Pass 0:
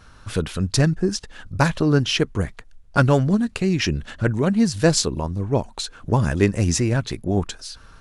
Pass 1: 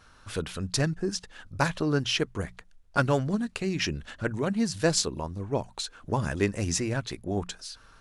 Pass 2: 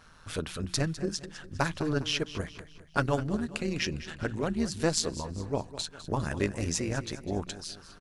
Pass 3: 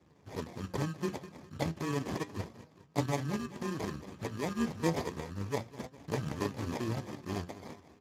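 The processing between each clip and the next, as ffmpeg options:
-af "lowshelf=f=330:g=-5.5,bandreject=f=60:t=h:w=6,bandreject=f=120:t=h:w=6,bandreject=f=180:t=h:w=6,volume=-5dB"
-filter_complex "[0:a]asplit=2[a][b];[b]acompressor=threshold=-34dB:ratio=6,volume=-2dB[c];[a][c]amix=inputs=2:normalize=0,tremolo=f=160:d=0.667,aecho=1:1:203|406|609|812:0.188|0.0829|0.0365|0.016,volume=-2dB"
-af "acrusher=samples=31:mix=1:aa=0.000001,flanger=delay=6.2:depth=6.8:regen=69:speed=0.32:shape=triangular" -ar 32000 -c:a libspeex -b:a 15k

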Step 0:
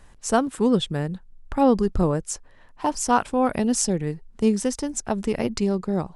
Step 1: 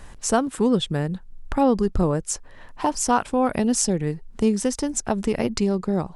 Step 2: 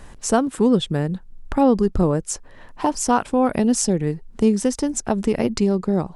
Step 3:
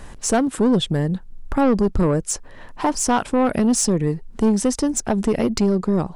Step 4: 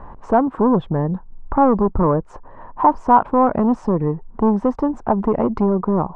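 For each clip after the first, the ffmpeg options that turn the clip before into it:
-af "acompressor=threshold=-40dB:ratio=1.5,volume=8.5dB"
-af "equalizer=f=290:w=0.53:g=3.5"
-af "asoftclip=type=tanh:threshold=-15dB,volume=3.5dB"
-af "lowpass=f=1k:t=q:w=3.4"

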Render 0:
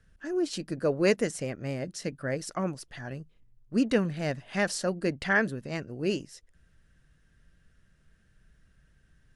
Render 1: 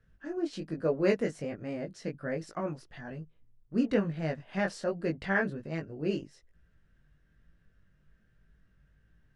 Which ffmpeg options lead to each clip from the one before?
-af "flanger=delay=18.5:depth=2.4:speed=1.2,aemphasis=mode=reproduction:type=75fm"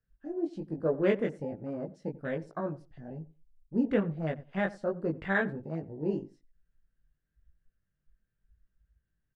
-filter_complex "[0:a]afwtdn=0.00891,asplit=2[a][b];[b]adelay=90,lowpass=f=1.5k:p=1,volume=-18dB,asplit=2[c][d];[d]adelay=90,lowpass=f=1.5k:p=1,volume=0.18[e];[a][c][e]amix=inputs=3:normalize=0"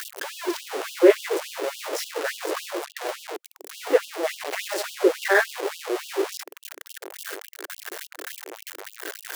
-af "aeval=exprs='val(0)+0.5*0.0398*sgn(val(0))':c=same,lowshelf=f=270:t=q:w=3:g=-11.5,afftfilt=real='re*gte(b*sr/1024,280*pow(2800/280,0.5+0.5*sin(2*PI*3.5*pts/sr)))':imag='im*gte(b*sr/1024,280*pow(2800/280,0.5+0.5*sin(2*PI*3.5*pts/sr)))':win_size=1024:overlap=0.75,volume=6.5dB"

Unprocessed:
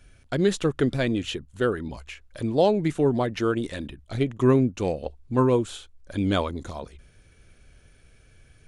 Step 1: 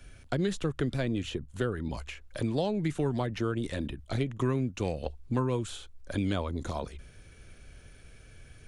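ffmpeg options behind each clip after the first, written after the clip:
-filter_complex "[0:a]acrossover=split=160|1100[a][b][c];[a]acompressor=threshold=-36dB:ratio=4[d];[b]acompressor=threshold=-35dB:ratio=4[e];[c]acompressor=threshold=-44dB:ratio=4[f];[d][e][f]amix=inputs=3:normalize=0,volume=3dB"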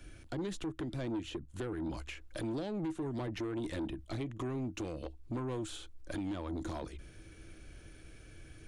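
-af "equalizer=f=320:w=7:g=15,alimiter=limit=-23dB:level=0:latency=1:release=311,asoftclip=type=tanh:threshold=-30.5dB,volume=-1.5dB"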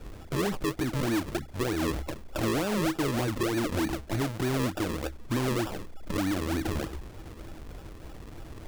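-af "aeval=exprs='val(0)+0.000891*sin(2*PI*3400*n/s)':c=same,acrusher=samples=41:mix=1:aa=0.000001:lfo=1:lforange=41:lforate=3.3,volume=9dB"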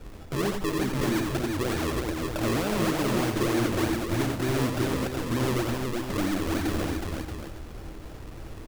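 -af "aecho=1:1:88|369|629:0.562|0.668|0.398"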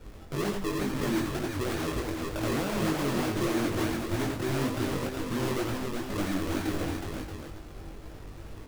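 -af "flanger=delay=19:depth=2.4:speed=2.1"

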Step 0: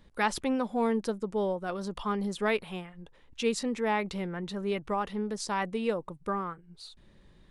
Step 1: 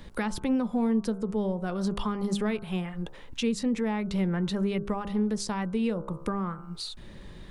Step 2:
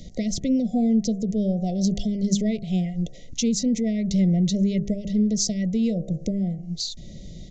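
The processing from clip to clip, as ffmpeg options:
-filter_complex "[0:a]asplit=2[a][b];[b]acompressor=threshold=-38dB:ratio=6,volume=-1.5dB[c];[a][c]amix=inputs=2:normalize=0,bandreject=f=67.35:t=h:w=4,bandreject=f=134.7:t=h:w=4,bandreject=f=202.05:t=h:w=4,bandreject=f=269.4:t=h:w=4,bandreject=f=336.75:t=h:w=4,bandreject=f=404.1:t=h:w=4,bandreject=f=471.45:t=h:w=4,bandreject=f=538.8:t=h:w=4,bandreject=f=606.15:t=h:w=4,bandreject=f=673.5:t=h:w=4,bandreject=f=740.85:t=h:w=4,bandreject=f=808.2:t=h:w=4,bandreject=f=875.55:t=h:w=4,bandreject=f=942.9:t=h:w=4,bandreject=f=1.01025k:t=h:w=4,bandreject=f=1.0776k:t=h:w=4,bandreject=f=1.14495k:t=h:w=4,bandreject=f=1.2123k:t=h:w=4,bandreject=f=1.27965k:t=h:w=4,bandreject=f=1.347k:t=h:w=4,bandreject=f=1.41435k:t=h:w=4,bandreject=f=1.4817k:t=h:w=4,bandreject=f=1.54905k:t=h:w=4,acrossover=split=230[d][e];[e]acompressor=threshold=-42dB:ratio=4[f];[d][f]amix=inputs=2:normalize=0,volume=8dB"
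-af "equalizer=f=160:t=o:w=0.67:g=5,equalizer=f=400:t=o:w=0.67:g=-6,equalizer=f=2.5k:t=o:w=0.67:g=-12,equalizer=f=6.3k:t=o:w=0.67:g=12,aresample=16000,aresample=44100,afftfilt=real='re*(1-between(b*sr/4096,750,1900))':imag='im*(1-between(b*sr/4096,750,1900))':win_size=4096:overlap=0.75,volume=5dB"

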